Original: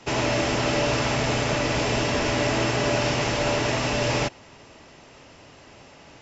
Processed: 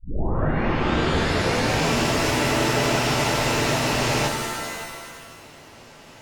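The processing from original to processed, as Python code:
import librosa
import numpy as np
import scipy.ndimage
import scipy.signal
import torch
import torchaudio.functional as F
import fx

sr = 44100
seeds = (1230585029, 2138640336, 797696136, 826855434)

y = fx.tape_start_head(x, sr, length_s=1.87)
y = fx.rev_shimmer(y, sr, seeds[0], rt60_s=1.7, semitones=7, shimmer_db=-2, drr_db=5.0)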